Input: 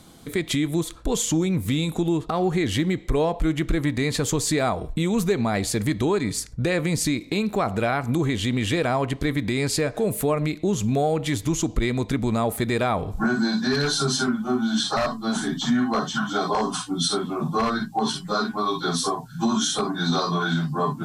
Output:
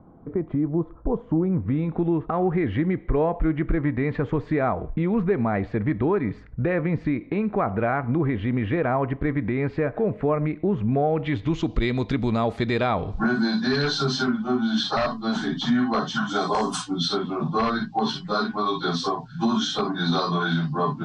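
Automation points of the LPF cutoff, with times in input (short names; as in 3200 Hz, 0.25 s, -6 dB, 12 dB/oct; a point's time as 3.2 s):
LPF 24 dB/oct
1.23 s 1100 Hz
2.05 s 2000 Hz
10.99 s 2000 Hz
11.82 s 4800 Hz
16.02 s 4800 Hz
16.71 s 12000 Hz
16.98 s 4700 Hz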